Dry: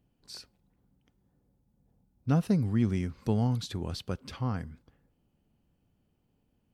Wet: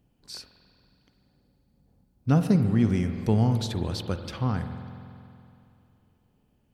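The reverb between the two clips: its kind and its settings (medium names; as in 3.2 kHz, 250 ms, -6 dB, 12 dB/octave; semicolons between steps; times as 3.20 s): spring tank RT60 2.7 s, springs 46 ms, chirp 30 ms, DRR 7.5 dB; trim +4.5 dB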